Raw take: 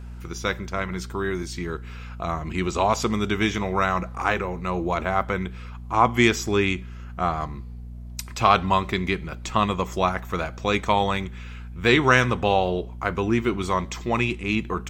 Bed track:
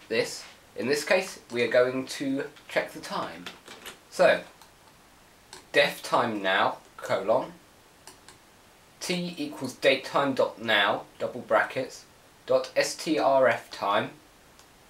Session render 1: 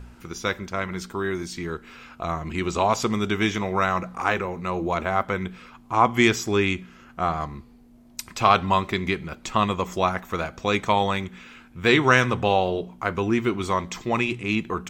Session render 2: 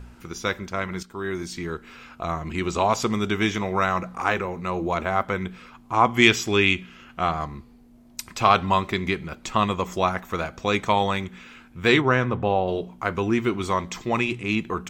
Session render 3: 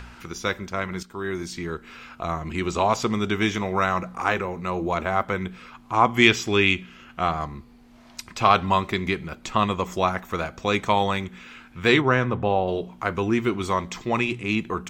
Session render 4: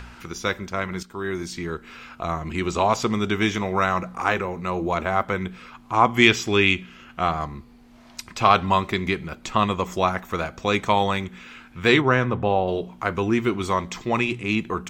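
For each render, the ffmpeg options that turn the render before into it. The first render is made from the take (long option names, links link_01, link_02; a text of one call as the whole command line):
ffmpeg -i in.wav -af "bandreject=frequency=60:width_type=h:width=4,bandreject=frequency=120:width_type=h:width=4,bandreject=frequency=180:width_type=h:width=4" out.wav
ffmpeg -i in.wav -filter_complex "[0:a]asettb=1/sr,asplit=3[link_01][link_02][link_03];[link_01]atrim=end=6.224[link_04];[link_02]atrim=start=6.22:end=7.31,asetpts=PTS-STARTPTS,afade=type=in:duration=0.004:curve=qsin,afade=type=out:start_time=1.086:duration=0.004:curve=qsin,equalizer=frequency=2900:width_type=o:width=0.91:gain=8.5[link_05];[link_03]atrim=start=7.306[link_06];[link_04][link_05]acrossfade=duration=0.004:curve1=hsin:curve2=qsin[link_07];[link_07][link_06]acrossfade=duration=0.004:curve1=qsin:curve2=hsin,asplit=3[link_08][link_09][link_10];[link_08]afade=type=out:start_time=12:duration=0.02[link_11];[link_09]lowpass=frequency=1000:poles=1,afade=type=in:start_time=12:duration=0.02,afade=type=out:start_time=12.67:duration=0.02[link_12];[link_10]afade=type=in:start_time=12.67:duration=0.02[link_13];[link_11][link_12][link_13]amix=inputs=3:normalize=0,asplit=2[link_14][link_15];[link_14]atrim=end=1.03,asetpts=PTS-STARTPTS,afade=type=out:start_time=1.026:duration=0.004:curve=hsin:silence=0.223872[link_16];[link_15]atrim=start=1.03,asetpts=PTS-STARTPTS,afade=type=in:duration=0.48:curve=qsin:silence=0.223872[link_17];[link_16][link_17]concat=n=2:v=0:a=1" out.wav
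ffmpeg -i in.wav -filter_complex "[0:a]acrossover=split=860|6100[link_01][link_02][link_03];[link_02]acompressor=mode=upward:threshold=-38dB:ratio=2.5[link_04];[link_03]alimiter=level_in=7.5dB:limit=-24dB:level=0:latency=1:release=477,volume=-7.5dB[link_05];[link_01][link_04][link_05]amix=inputs=3:normalize=0" out.wav
ffmpeg -i in.wav -af "volume=1dB,alimiter=limit=-1dB:level=0:latency=1" out.wav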